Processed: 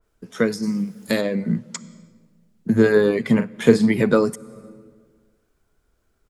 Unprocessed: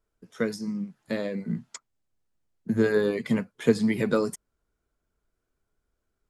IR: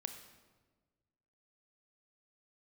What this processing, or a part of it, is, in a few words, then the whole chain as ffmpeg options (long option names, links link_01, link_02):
ducked reverb: -filter_complex "[0:a]asplit=3[link_01][link_02][link_03];[1:a]atrim=start_sample=2205[link_04];[link_02][link_04]afir=irnorm=-1:irlink=0[link_05];[link_03]apad=whole_len=277592[link_06];[link_05][link_06]sidechaincompress=threshold=-39dB:ratio=5:attack=16:release=333,volume=-0.5dB[link_07];[link_01][link_07]amix=inputs=2:normalize=0,asplit=3[link_08][link_09][link_10];[link_08]afade=type=out:start_time=0.62:duration=0.02[link_11];[link_09]aemphasis=mode=production:type=75kf,afade=type=in:start_time=0.62:duration=0.02,afade=type=out:start_time=1.2:duration=0.02[link_12];[link_10]afade=type=in:start_time=1.2:duration=0.02[link_13];[link_11][link_12][link_13]amix=inputs=3:normalize=0,asplit=3[link_14][link_15][link_16];[link_14]afade=type=out:start_time=3.38:duration=0.02[link_17];[link_15]asplit=2[link_18][link_19];[link_19]adelay=43,volume=-9.5dB[link_20];[link_18][link_20]amix=inputs=2:normalize=0,afade=type=in:start_time=3.38:duration=0.02,afade=type=out:start_time=3.89:duration=0.02[link_21];[link_16]afade=type=in:start_time=3.89:duration=0.02[link_22];[link_17][link_21][link_22]amix=inputs=3:normalize=0,adynamicequalizer=threshold=0.00708:dfrequency=2600:dqfactor=0.7:tfrequency=2600:tqfactor=0.7:attack=5:release=100:ratio=0.375:range=3:mode=cutabove:tftype=highshelf,volume=6.5dB"